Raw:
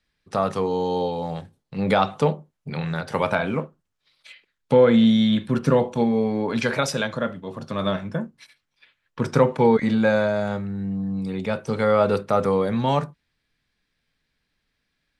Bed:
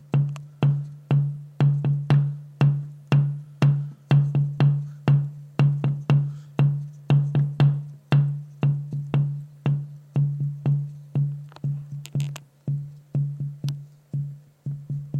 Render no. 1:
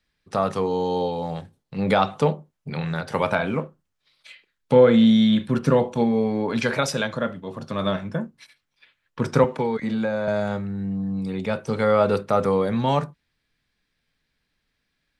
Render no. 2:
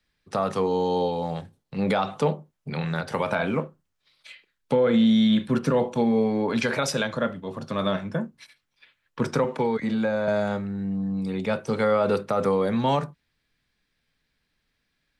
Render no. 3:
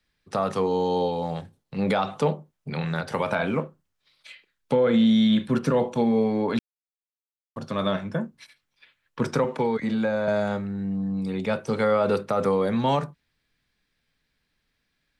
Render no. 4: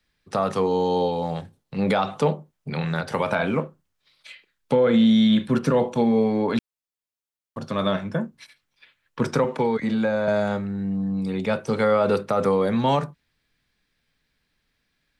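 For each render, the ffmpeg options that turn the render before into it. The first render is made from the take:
-filter_complex "[0:a]asettb=1/sr,asplit=3[a][b][c];[a]atrim=end=3.624[d];[b]atrim=start=3.62:end=5.45,asetpts=PTS-STARTPTS,afade=t=in:d=0.004:c=qsin,afade=t=out:st=1.826:d=0.004:c=qsin,asplit=2[e][f];[f]adelay=32,volume=-13.5dB[g];[e][g]amix=inputs=2:normalize=0,atrim=end_sample=80703[h];[c]atrim=start=5.446[i];[d][h]acrossfade=d=0.004:c1=hsin:c2=qsin[j];[j][i]acrossfade=d=0.004:c1=qsin:c2=hsin,asettb=1/sr,asplit=3[k][l][m];[k]atrim=end=9.444[n];[l]atrim=start=9.44:end=10.28,asetpts=PTS-STARTPTS,afade=t=in:d=0.004:c=qsin,afade=t=out:st=0.836:d=0.004:c=qsin,acrossover=split=130|1300[o][p][q];[o]acompressor=threshold=-43dB:ratio=4[r];[p]acompressor=threshold=-23dB:ratio=4[s];[q]acompressor=threshold=-39dB:ratio=4[t];[r][s][t]amix=inputs=3:normalize=0[u];[m]atrim=start=10.276[v];[n][u]acrossfade=d=0.004:c1=hsin:c2=qsin[w];[w][v]acrossfade=d=0.004:c1=qsin:c2=hsin"
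-filter_complex "[0:a]acrossover=split=120[a][b];[a]acompressor=threshold=-44dB:ratio=6[c];[c][b]amix=inputs=2:normalize=0,alimiter=limit=-13dB:level=0:latency=1:release=57"
-filter_complex "[0:a]asplit=3[a][b][c];[a]atrim=end=6.59,asetpts=PTS-STARTPTS,afade=t=out:st=6.586:d=0.004:c=hsin[d];[b]atrim=start=6.59:end=7.56,asetpts=PTS-STARTPTS,volume=0[e];[c]atrim=start=7.56,asetpts=PTS-STARTPTS,afade=t=in:d=0.004:c=hsin[f];[d][e][f]concat=n=3:v=0:a=1"
-af "volume=2dB"

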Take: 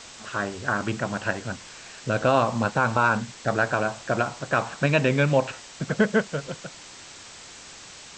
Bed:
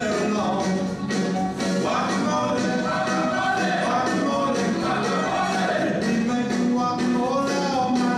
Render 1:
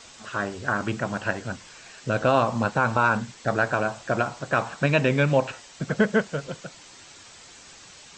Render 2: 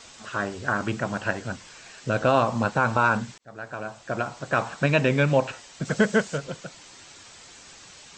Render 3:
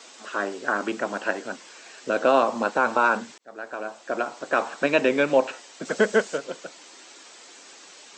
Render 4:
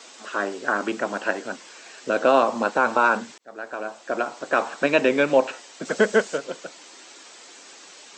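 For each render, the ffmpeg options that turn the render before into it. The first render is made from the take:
-af "afftdn=nr=6:nf=-45"
-filter_complex "[0:a]asettb=1/sr,asplit=3[a][b][c];[a]atrim=end=5.854[d];[b]atrim=start=5.85:end=6.38,asetpts=PTS-STARTPTS,afade=t=in:d=0.004:c=qsin,afade=t=out:st=0.526:d=0.004:c=qsin,aemphasis=mode=production:type=50kf[e];[c]atrim=start=6.376[f];[d][e]acrossfade=d=0.004:c1=hsin:c2=qsin[g];[g][f]acrossfade=d=0.004:c1=qsin:c2=hsin,asplit=2[h][i];[h]atrim=end=3.38,asetpts=PTS-STARTPTS,afade=t=out:st=3.376:d=0.004:c=hsin[j];[i]atrim=start=3.38,asetpts=PTS-STARTPTS,afade=t=in:d=1.24[k];[j][k]concat=n=2:v=0:a=1"
-af "highpass=f=290:w=0.5412,highpass=f=290:w=1.3066,lowshelf=f=430:g=6.5"
-af "volume=1.5dB"

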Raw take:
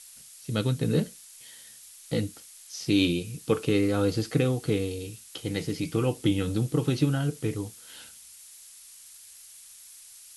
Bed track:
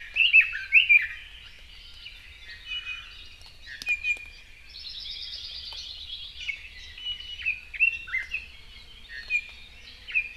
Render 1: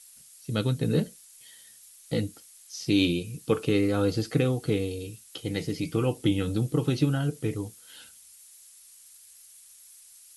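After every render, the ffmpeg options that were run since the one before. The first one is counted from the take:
-af "afftdn=nr=6:nf=-50"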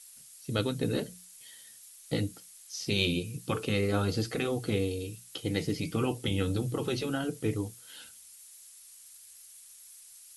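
-af "bandreject=f=60:t=h:w=6,bandreject=f=120:t=h:w=6,bandreject=f=180:t=h:w=6,afftfilt=real='re*lt(hypot(re,im),0.398)':imag='im*lt(hypot(re,im),0.398)':win_size=1024:overlap=0.75"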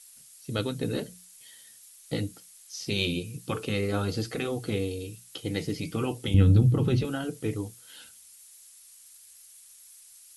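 -filter_complex "[0:a]asettb=1/sr,asplit=3[a][b][c];[a]atrim=end=6.344[d];[b]atrim=start=6.34:end=7.05,asetpts=PTS-STARTPTS,afade=t=in:d=0.004:c=qsin,afade=t=out:st=0.706:d=0.004:c=qsin,bass=f=250:g=15,treble=f=4k:g=-6[e];[c]atrim=start=7.046[f];[d][e]acrossfade=d=0.004:c1=hsin:c2=qsin[g];[g][f]acrossfade=d=0.004:c1=qsin:c2=hsin"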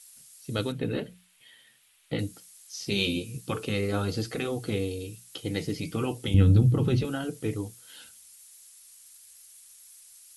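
-filter_complex "[0:a]asettb=1/sr,asplit=3[a][b][c];[a]atrim=end=0.724[d];[b]atrim=start=0.72:end=2.19,asetpts=PTS-STARTPTS,afade=t=in:d=0.004:c=qsin,afade=t=out:st=1.466:d=0.004:c=qsin,highshelf=f=4.1k:t=q:w=1.5:g=-11.5[e];[c]atrim=start=2.186[f];[d][e]acrossfade=d=0.004:c1=hsin:c2=qsin[g];[g][f]acrossfade=d=0.004:c1=qsin:c2=hsin,asettb=1/sr,asplit=3[h][i][j];[h]atrim=end=2.904[k];[i]atrim=start=2.9:end=3.41,asetpts=PTS-STARTPTS,afade=t=in:d=0.004:c=qsin,afade=t=out:st=0.506:d=0.004:c=qsin,asplit=2[l][m];[m]adelay=15,volume=-5.5dB[n];[l][n]amix=inputs=2:normalize=0,atrim=end_sample=22491[o];[j]atrim=start=3.406[p];[k][o]acrossfade=d=0.004:c1=hsin:c2=qsin[q];[q][p]acrossfade=d=0.004:c1=qsin:c2=hsin"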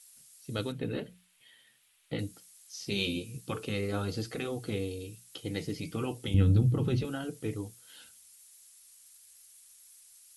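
-af "volume=-4.5dB"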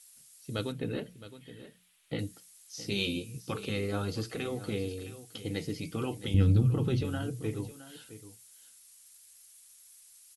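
-af "aecho=1:1:665:0.188"

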